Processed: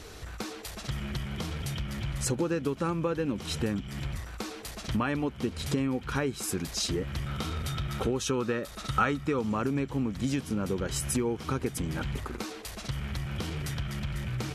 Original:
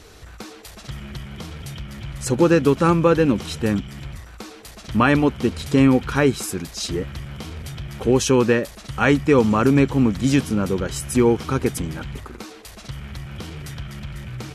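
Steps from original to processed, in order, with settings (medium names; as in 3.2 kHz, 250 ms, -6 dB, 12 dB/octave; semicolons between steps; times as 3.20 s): compression 6:1, threshold -27 dBFS, peak gain reduction 15.5 dB; 7.26–9.41 s: small resonant body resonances 1.3/3.7 kHz, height 12 dB, ringing for 30 ms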